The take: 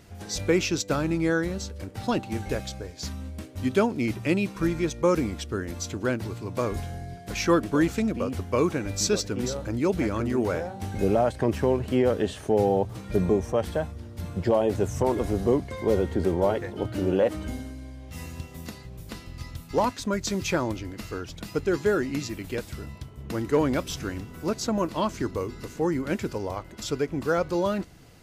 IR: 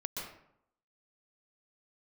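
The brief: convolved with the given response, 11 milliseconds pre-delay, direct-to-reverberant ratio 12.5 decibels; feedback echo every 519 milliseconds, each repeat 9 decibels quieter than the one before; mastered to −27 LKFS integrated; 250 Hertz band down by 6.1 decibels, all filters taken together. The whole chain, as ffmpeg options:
-filter_complex "[0:a]equalizer=frequency=250:width_type=o:gain=-9,aecho=1:1:519|1038|1557|2076:0.355|0.124|0.0435|0.0152,asplit=2[link_01][link_02];[1:a]atrim=start_sample=2205,adelay=11[link_03];[link_02][link_03]afir=irnorm=-1:irlink=0,volume=-14dB[link_04];[link_01][link_04]amix=inputs=2:normalize=0,volume=2dB"

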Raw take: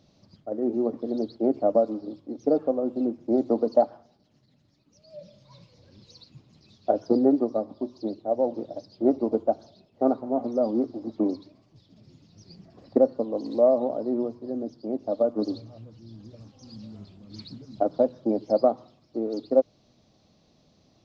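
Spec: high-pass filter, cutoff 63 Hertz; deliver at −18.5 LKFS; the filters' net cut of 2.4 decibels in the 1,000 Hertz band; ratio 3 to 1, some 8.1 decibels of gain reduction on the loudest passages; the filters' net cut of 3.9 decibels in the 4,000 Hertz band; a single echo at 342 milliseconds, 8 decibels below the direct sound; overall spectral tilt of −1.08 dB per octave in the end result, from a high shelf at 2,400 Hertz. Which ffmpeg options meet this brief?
ffmpeg -i in.wav -af "highpass=63,equalizer=frequency=1000:width_type=o:gain=-4.5,highshelf=frequency=2400:gain=4.5,equalizer=frequency=4000:width_type=o:gain=-8.5,acompressor=threshold=-26dB:ratio=3,aecho=1:1:342:0.398,volume=13dB" out.wav

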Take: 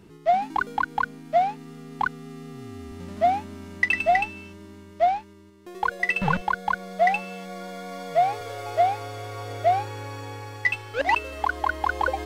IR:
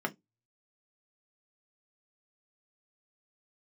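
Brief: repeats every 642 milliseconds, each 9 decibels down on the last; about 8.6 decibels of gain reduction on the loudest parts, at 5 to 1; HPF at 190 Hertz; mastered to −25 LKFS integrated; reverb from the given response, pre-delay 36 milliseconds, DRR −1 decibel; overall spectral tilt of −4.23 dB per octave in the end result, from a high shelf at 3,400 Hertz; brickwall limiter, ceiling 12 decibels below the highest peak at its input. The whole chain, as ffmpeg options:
-filter_complex "[0:a]highpass=190,highshelf=frequency=3400:gain=7,acompressor=threshold=-26dB:ratio=5,alimiter=limit=-24dB:level=0:latency=1,aecho=1:1:642|1284|1926|2568:0.355|0.124|0.0435|0.0152,asplit=2[link_01][link_02];[1:a]atrim=start_sample=2205,adelay=36[link_03];[link_02][link_03]afir=irnorm=-1:irlink=0,volume=-5dB[link_04];[link_01][link_04]amix=inputs=2:normalize=0,volume=6.5dB"

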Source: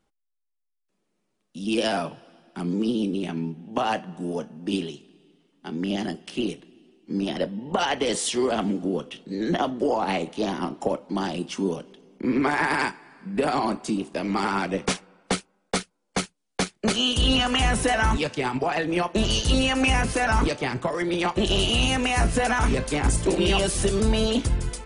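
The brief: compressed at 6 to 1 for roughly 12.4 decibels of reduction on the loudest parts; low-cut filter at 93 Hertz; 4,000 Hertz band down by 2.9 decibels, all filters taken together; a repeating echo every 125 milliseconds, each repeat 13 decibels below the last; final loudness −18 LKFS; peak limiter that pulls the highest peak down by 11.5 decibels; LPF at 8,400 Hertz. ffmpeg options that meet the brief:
ffmpeg -i in.wav -af "highpass=93,lowpass=8400,equalizer=frequency=4000:width_type=o:gain=-4.5,acompressor=threshold=-33dB:ratio=6,alimiter=level_in=5.5dB:limit=-24dB:level=0:latency=1,volume=-5.5dB,aecho=1:1:125|250|375:0.224|0.0493|0.0108,volume=21dB" out.wav

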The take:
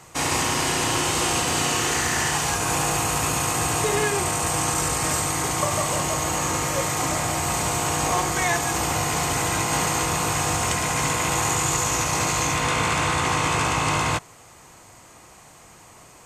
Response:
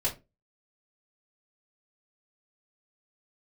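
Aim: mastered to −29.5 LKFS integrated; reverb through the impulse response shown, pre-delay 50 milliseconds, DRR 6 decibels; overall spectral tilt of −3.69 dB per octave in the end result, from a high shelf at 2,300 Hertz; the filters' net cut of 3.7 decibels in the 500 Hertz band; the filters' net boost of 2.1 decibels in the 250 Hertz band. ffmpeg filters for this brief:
-filter_complex "[0:a]equalizer=frequency=250:width_type=o:gain=5.5,equalizer=frequency=500:width_type=o:gain=-6.5,highshelf=frequency=2300:gain=-4.5,asplit=2[link_01][link_02];[1:a]atrim=start_sample=2205,adelay=50[link_03];[link_02][link_03]afir=irnorm=-1:irlink=0,volume=-12.5dB[link_04];[link_01][link_04]amix=inputs=2:normalize=0,volume=-6dB"

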